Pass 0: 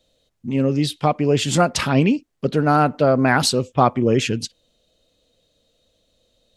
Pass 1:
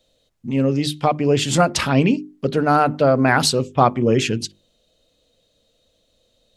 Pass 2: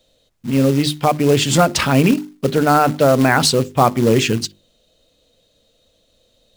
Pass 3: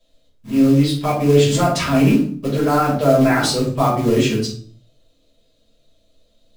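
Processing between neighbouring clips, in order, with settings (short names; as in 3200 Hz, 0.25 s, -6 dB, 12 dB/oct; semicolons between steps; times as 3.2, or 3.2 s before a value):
notches 50/100/150/200/250/300/350/400 Hz; gain +1 dB
in parallel at -2 dB: limiter -10.5 dBFS, peak gain reduction 9 dB; on the sum: short-mantissa float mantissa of 2-bit; gain -1 dB
resonator 72 Hz, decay 0.45 s, harmonics all, mix 50%; shoebox room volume 310 m³, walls furnished, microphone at 5.6 m; gain -8 dB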